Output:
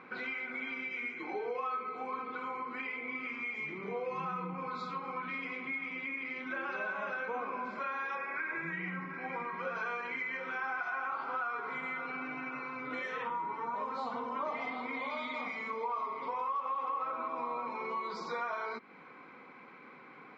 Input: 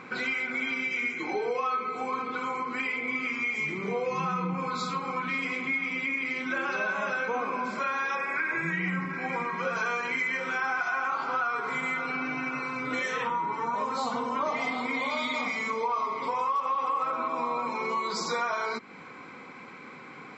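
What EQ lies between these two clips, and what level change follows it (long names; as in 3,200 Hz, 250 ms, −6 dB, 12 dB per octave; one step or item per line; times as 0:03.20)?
high-pass filter 260 Hz 6 dB per octave
high-frequency loss of the air 170 metres
high-shelf EQ 5,300 Hz −7.5 dB
−5.5 dB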